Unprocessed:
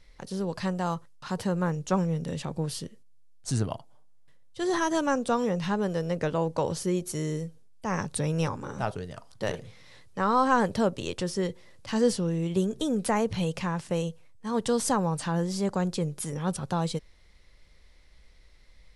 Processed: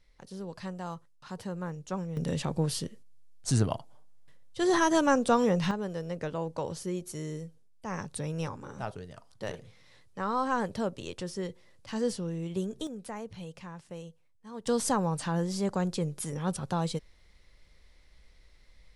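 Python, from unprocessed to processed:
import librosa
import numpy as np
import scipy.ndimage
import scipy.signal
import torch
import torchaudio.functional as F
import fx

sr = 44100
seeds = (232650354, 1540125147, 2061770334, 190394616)

y = fx.gain(x, sr, db=fx.steps((0.0, -9.0), (2.17, 2.0), (5.71, -6.5), (12.87, -14.0), (14.67, -2.0)))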